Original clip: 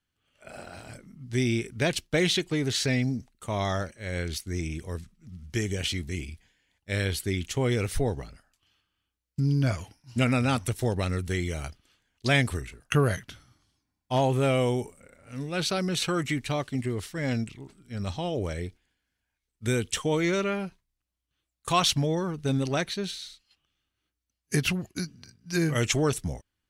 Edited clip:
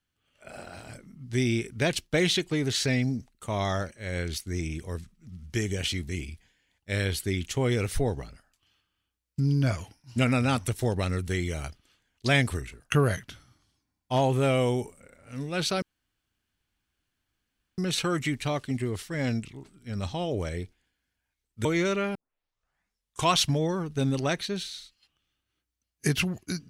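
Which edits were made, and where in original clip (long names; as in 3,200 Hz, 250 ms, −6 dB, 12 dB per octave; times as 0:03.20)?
0:15.82: splice in room tone 1.96 s
0:19.69–0:20.13: remove
0:20.63: tape start 1.16 s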